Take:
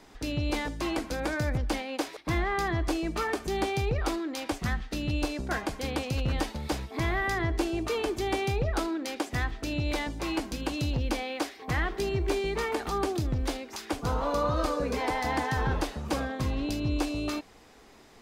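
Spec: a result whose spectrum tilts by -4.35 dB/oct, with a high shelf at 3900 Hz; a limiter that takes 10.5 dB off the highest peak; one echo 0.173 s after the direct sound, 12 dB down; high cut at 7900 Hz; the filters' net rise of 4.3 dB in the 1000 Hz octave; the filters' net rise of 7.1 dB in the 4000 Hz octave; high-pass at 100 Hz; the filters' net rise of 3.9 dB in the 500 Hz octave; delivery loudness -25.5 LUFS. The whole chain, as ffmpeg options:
-af "highpass=100,lowpass=7.9k,equalizer=f=500:t=o:g=4,equalizer=f=1k:t=o:g=3.5,highshelf=f=3.9k:g=5.5,equalizer=f=4k:t=o:g=5.5,alimiter=limit=-21.5dB:level=0:latency=1,aecho=1:1:173:0.251,volume=5.5dB"

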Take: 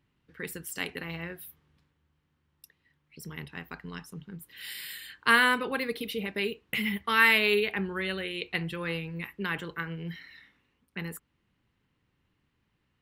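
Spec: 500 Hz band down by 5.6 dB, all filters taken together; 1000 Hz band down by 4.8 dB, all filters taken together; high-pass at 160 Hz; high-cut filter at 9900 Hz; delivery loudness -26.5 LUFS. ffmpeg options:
-af "highpass=160,lowpass=9.9k,equalizer=f=500:t=o:g=-6,equalizer=f=1k:t=o:g=-5,volume=4dB"

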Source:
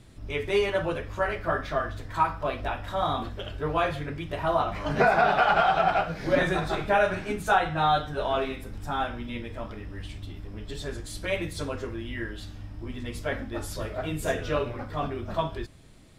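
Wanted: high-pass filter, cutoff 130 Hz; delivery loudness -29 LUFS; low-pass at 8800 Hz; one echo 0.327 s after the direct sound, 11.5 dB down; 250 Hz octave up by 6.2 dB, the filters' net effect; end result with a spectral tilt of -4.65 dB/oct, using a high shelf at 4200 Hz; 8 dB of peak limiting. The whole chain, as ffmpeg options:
-af "highpass=130,lowpass=8.8k,equalizer=f=250:t=o:g=9,highshelf=f=4.2k:g=-4.5,alimiter=limit=-15dB:level=0:latency=1,aecho=1:1:327:0.266,volume=-1dB"

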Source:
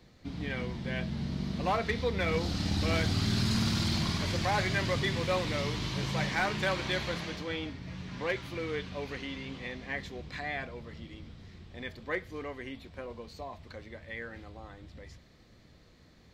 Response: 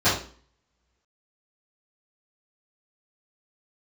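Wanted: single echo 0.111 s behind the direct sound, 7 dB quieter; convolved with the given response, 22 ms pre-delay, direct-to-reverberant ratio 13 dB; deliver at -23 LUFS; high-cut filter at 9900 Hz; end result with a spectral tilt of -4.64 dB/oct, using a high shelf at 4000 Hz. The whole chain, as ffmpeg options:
-filter_complex "[0:a]lowpass=9.9k,highshelf=f=4k:g=-6,aecho=1:1:111:0.447,asplit=2[a][b];[1:a]atrim=start_sample=2205,adelay=22[c];[b][c]afir=irnorm=-1:irlink=0,volume=-31dB[d];[a][d]amix=inputs=2:normalize=0,volume=9.5dB"

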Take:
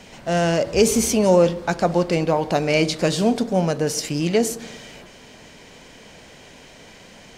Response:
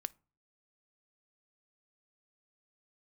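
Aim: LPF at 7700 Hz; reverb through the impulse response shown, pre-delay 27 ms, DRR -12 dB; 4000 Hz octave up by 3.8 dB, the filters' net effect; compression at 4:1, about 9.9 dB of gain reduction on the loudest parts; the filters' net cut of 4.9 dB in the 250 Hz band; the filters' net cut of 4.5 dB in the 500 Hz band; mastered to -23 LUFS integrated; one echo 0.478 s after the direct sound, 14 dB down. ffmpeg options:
-filter_complex "[0:a]lowpass=7.7k,equalizer=f=250:t=o:g=-6,equalizer=f=500:t=o:g=-4,equalizer=f=4k:t=o:g=5.5,acompressor=threshold=-27dB:ratio=4,aecho=1:1:478:0.2,asplit=2[a][b];[1:a]atrim=start_sample=2205,adelay=27[c];[b][c]afir=irnorm=-1:irlink=0,volume=14dB[d];[a][d]amix=inputs=2:normalize=0,volume=-5.5dB"

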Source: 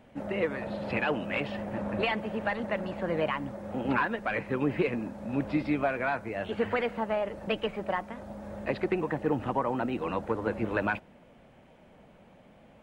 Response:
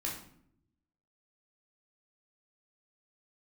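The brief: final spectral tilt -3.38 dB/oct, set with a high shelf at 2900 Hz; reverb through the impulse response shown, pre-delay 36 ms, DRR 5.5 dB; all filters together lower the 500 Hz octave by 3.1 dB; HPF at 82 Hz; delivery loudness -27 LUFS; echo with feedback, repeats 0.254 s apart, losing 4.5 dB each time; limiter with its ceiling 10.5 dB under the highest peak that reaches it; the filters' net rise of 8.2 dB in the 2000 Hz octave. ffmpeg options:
-filter_complex "[0:a]highpass=82,equalizer=f=500:t=o:g=-4.5,equalizer=f=2k:t=o:g=9,highshelf=f=2.9k:g=4.5,alimiter=limit=-20.5dB:level=0:latency=1,aecho=1:1:254|508|762|1016|1270|1524|1778|2032|2286:0.596|0.357|0.214|0.129|0.0772|0.0463|0.0278|0.0167|0.01,asplit=2[a][b];[1:a]atrim=start_sample=2205,adelay=36[c];[b][c]afir=irnorm=-1:irlink=0,volume=-8dB[d];[a][d]amix=inputs=2:normalize=0,volume=2dB"

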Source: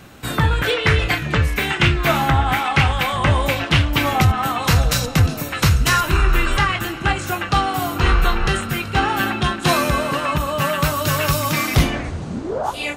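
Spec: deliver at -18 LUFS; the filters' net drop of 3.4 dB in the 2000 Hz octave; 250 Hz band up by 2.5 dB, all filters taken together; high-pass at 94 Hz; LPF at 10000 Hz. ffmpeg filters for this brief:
-af "highpass=94,lowpass=10k,equalizer=f=250:t=o:g=4,equalizer=f=2k:t=o:g=-4.5,volume=2dB"

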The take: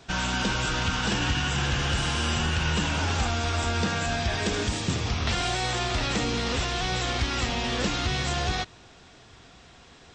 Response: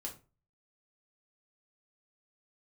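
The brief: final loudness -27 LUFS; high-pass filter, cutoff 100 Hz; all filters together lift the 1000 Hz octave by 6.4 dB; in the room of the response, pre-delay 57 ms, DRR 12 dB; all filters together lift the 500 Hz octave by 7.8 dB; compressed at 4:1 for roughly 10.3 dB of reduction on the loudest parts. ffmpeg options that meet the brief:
-filter_complex "[0:a]highpass=100,equalizer=f=500:t=o:g=8.5,equalizer=f=1k:t=o:g=5.5,acompressor=threshold=-32dB:ratio=4,asplit=2[a][b];[1:a]atrim=start_sample=2205,adelay=57[c];[b][c]afir=irnorm=-1:irlink=0,volume=-10dB[d];[a][d]amix=inputs=2:normalize=0,volume=6dB"

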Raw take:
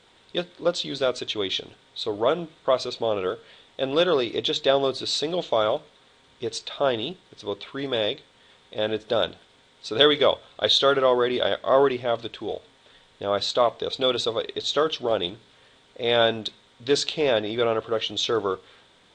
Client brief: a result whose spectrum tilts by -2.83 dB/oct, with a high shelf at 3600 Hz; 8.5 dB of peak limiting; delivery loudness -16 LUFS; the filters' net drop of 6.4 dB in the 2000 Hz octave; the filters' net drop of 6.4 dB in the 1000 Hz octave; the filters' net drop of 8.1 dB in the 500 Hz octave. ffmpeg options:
-af "equalizer=f=500:t=o:g=-8.5,equalizer=f=1k:t=o:g=-3.5,equalizer=f=2k:t=o:g=-4.5,highshelf=f=3.6k:g=-8.5,volume=16dB,alimiter=limit=-2dB:level=0:latency=1"

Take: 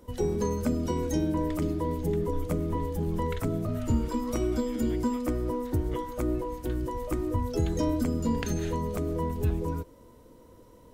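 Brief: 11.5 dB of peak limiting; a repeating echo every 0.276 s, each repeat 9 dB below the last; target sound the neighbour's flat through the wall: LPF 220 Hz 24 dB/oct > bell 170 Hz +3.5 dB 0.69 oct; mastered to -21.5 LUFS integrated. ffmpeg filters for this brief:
-af "alimiter=level_in=1.5dB:limit=-24dB:level=0:latency=1,volume=-1.5dB,lowpass=f=220:w=0.5412,lowpass=f=220:w=1.3066,equalizer=f=170:t=o:w=0.69:g=3.5,aecho=1:1:276|552|828|1104:0.355|0.124|0.0435|0.0152,volume=16dB"

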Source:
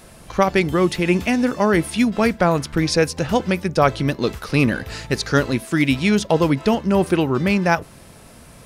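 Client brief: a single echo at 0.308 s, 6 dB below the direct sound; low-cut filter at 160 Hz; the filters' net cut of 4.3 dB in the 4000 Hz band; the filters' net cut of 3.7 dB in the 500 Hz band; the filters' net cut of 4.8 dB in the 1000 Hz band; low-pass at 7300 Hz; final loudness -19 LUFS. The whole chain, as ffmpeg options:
-af "highpass=160,lowpass=7.3k,equalizer=f=500:t=o:g=-3.5,equalizer=f=1k:t=o:g=-5,equalizer=f=4k:t=o:g=-5,aecho=1:1:308:0.501,volume=2.5dB"

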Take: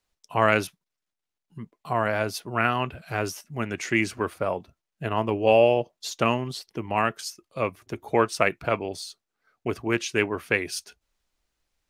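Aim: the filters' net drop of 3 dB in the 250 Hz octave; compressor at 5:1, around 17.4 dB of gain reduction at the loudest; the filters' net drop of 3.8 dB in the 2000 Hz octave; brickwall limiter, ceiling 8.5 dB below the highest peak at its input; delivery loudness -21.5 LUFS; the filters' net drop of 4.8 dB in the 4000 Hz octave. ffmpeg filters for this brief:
-af "equalizer=f=250:t=o:g=-4,equalizer=f=2k:t=o:g=-3.5,equalizer=f=4k:t=o:g=-5.5,acompressor=threshold=-35dB:ratio=5,volume=21dB,alimiter=limit=-7.5dB:level=0:latency=1"

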